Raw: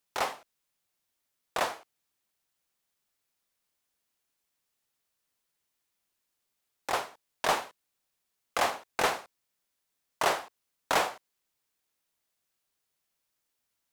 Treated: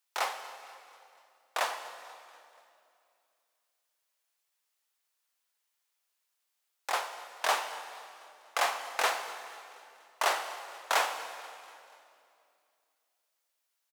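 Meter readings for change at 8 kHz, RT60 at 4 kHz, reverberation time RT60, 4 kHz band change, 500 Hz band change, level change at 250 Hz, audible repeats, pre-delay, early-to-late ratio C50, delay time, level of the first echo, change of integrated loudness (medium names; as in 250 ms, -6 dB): +0.5 dB, 2.2 s, 2.6 s, +0.5 dB, -3.5 dB, -12.5 dB, 3, 16 ms, 8.5 dB, 242 ms, -21.0 dB, -1.5 dB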